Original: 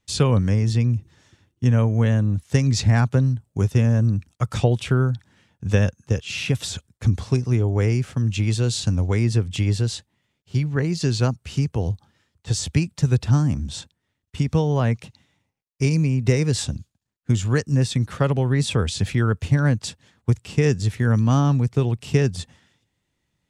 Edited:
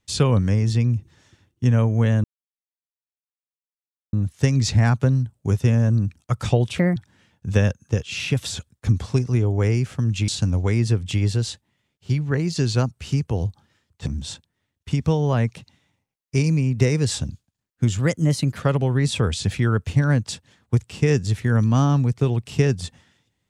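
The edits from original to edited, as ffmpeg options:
-filter_complex "[0:a]asplit=8[a][b][c][d][e][f][g][h];[a]atrim=end=2.24,asetpts=PTS-STARTPTS,afade=t=out:st=2.236:d=0.004:c=hsin,apad=pad_dur=1.89[i];[b]atrim=start=2.24:end=4.894,asetpts=PTS-STARTPTS,afade=t=in:d=0.004:c=hsin[j];[c]atrim=start=4.89:end=5.14,asetpts=PTS-STARTPTS,asetrate=60858,aresample=44100,atrim=end_sample=7989,asetpts=PTS-STARTPTS[k];[d]atrim=start=5.136:end=8.462[l];[e]atrim=start=8.728:end=12.512[m];[f]atrim=start=13.528:end=17.464[n];[g]atrim=start=17.46:end=18.15,asetpts=PTS-STARTPTS,asetrate=50274,aresample=44100,atrim=end_sample=26692,asetpts=PTS-STARTPTS[o];[h]atrim=start=18.146[p];[i][j]concat=n=2:v=0:a=1[q];[q][k]acrossfade=d=0.004:c1=hsin:c2=hsin[r];[r][l]acrossfade=d=0.004:c1=hsin:c2=hsin[s];[s][m]acrossfade=d=0.004:c1=hsin:c2=hsin[t];[t][n]acrossfade=d=0.004:c1=hsin:c2=hsin[u];[u][o]acrossfade=d=0.004:c1=hsin:c2=hsin[v];[v][p]acrossfade=d=0.004:c1=hsin:c2=hsin"

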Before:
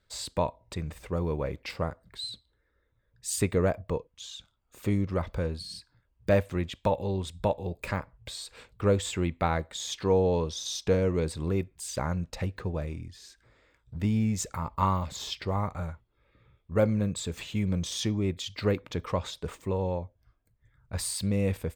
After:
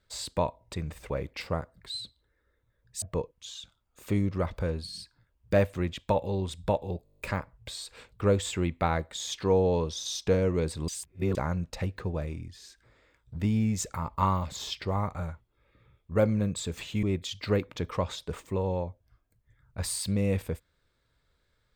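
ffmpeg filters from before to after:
-filter_complex "[0:a]asplit=14[a][b][c][d][e][f][g][h][i][j][k][l][m][n];[a]atrim=end=1.102[o];[b]atrim=start=1.388:end=3.312[p];[c]atrim=start=3.778:end=7.822[q];[d]atrim=start=7.798:end=7.822[r];[e]atrim=start=7.798:end=7.822[s];[f]atrim=start=7.798:end=7.822[t];[g]atrim=start=7.798:end=7.822[u];[h]atrim=start=7.798:end=7.822[v];[i]atrim=start=7.798:end=7.822[w];[j]atrim=start=7.798:end=7.822[x];[k]atrim=start=7.798:end=11.482[y];[l]atrim=start=11.478:end=11.952,asetpts=PTS-STARTPTS,areverse[z];[m]atrim=start=11.948:end=17.632[aa];[n]atrim=start=18.178[ab];[o][p]acrossfade=d=0.004:c1=hsin:c2=hsin[ac];[ac][q]acrossfade=d=0.004:c1=hsin:c2=hsin[ad];[ad][r]acrossfade=d=0.004:c1=hsin:c2=hsin[ae];[ae][s]acrossfade=d=0.004:c1=hsin:c2=hsin[af];[af][t]acrossfade=d=0.004:c1=hsin:c2=hsin[ag];[ag][u]acrossfade=d=0.004:c1=hsin:c2=hsin[ah];[ah][v]acrossfade=d=0.004:c1=hsin:c2=hsin[ai];[ai][w]acrossfade=d=0.004:c1=hsin:c2=hsin[aj];[aj][x]acrossfade=d=0.004:c1=hsin:c2=hsin[ak];[ak][y]acrossfade=d=0.004:c1=hsin:c2=hsin[al];[al][z]acrossfade=d=0.004:c1=hsin:c2=hsin[am];[am][aa]acrossfade=d=0.004:c1=hsin:c2=hsin[an];[an][ab]acrossfade=d=0.004:c1=hsin:c2=hsin"

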